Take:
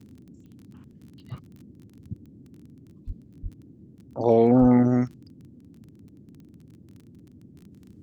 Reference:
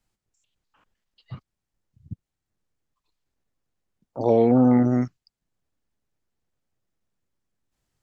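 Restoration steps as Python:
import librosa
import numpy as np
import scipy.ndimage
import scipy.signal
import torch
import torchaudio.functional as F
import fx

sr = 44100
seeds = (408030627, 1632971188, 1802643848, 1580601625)

y = fx.fix_declick_ar(x, sr, threshold=6.5)
y = fx.fix_deplosive(y, sr, at_s=(3.06, 3.42, 4.6))
y = fx.noise_reduce(y, sr, print_start_s=6.57, print_end_s=7.07, reduce_db=30.0)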